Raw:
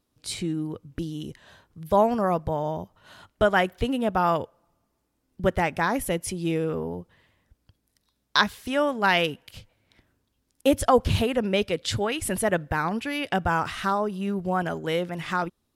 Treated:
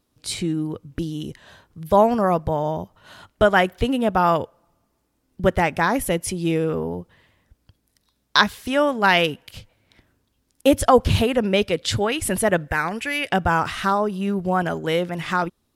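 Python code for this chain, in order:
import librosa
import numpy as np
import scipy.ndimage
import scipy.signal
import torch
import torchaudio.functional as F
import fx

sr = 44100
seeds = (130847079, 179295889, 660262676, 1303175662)

y = fx.graphic_eq(x, sr, hz=(125, 250, 1000, 2000, 4000, 8000), db=(-5, -6, -5, 6, -4, 6), at=(12.68, 13.3))
y = y * librosa.db_to_amplitude(4.5)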